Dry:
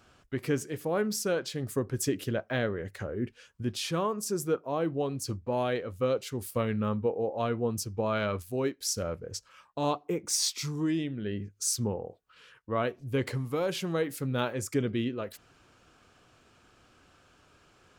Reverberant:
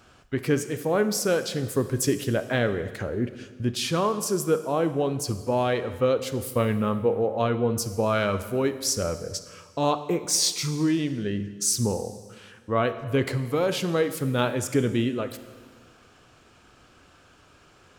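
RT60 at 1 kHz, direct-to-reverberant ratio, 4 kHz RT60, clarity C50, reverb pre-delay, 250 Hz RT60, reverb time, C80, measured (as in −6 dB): 1.6 s, 11.0 dB, 1.5 s, 12.0 dB, 26 ms, 1.7 s, 1.6 s, 13.5 dB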